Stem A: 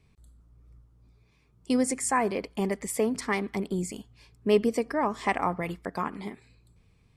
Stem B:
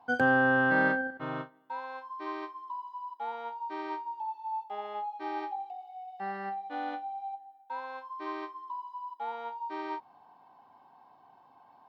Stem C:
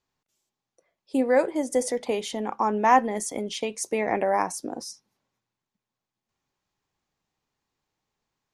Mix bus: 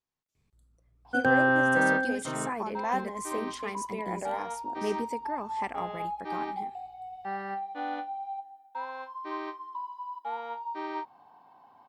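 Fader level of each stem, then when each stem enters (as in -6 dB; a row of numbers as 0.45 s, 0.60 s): -9.5 dB, +1.5 dB, -11.5 dB; 0.35 s, 1.05 s, 0.00 s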